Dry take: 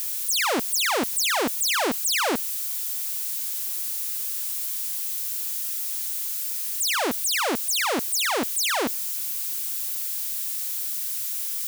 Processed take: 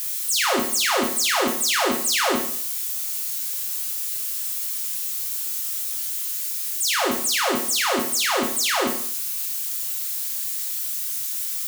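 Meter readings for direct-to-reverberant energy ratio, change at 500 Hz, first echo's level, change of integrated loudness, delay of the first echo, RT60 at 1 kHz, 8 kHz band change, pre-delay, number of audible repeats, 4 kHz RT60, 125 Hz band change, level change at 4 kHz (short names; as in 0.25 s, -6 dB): 1.0 dB, +3.0 dB, none, +2.0 dB, none, 0.55 s, +2.5 dB, 6 ms, none, 0.50 s, n/a, +2.5 dB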